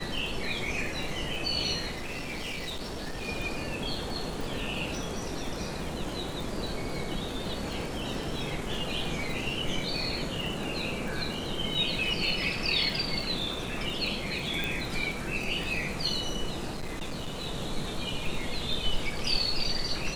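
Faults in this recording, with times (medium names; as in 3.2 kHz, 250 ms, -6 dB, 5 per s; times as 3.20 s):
crackle 45 per s -34 dBFS
1.91–3.29 s: clipped -32.5 dBFS
14.64 s: pop
16.73–17.46 s: clipped -31 dBFS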